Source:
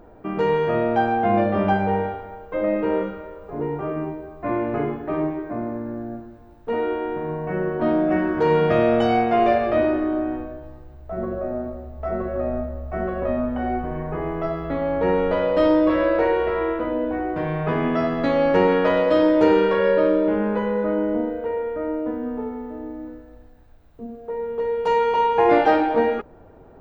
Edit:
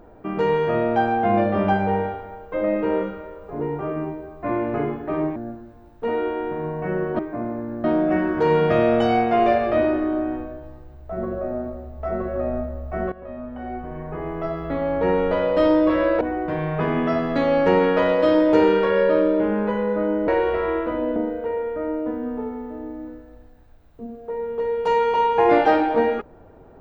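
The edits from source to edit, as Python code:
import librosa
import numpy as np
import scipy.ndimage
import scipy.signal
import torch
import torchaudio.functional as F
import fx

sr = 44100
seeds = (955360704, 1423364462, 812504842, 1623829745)

y = fx.edit(x, sr, fx.move(start_s=5.36, length_s=0.65, to_s=7.84),
    fx.fade_in_from(start_s=13.12, length_s=1.65, floor_db=-16.0),
    fx.move(start_s=16.21, length_s=0.88, to_s=21.16), tone=tone)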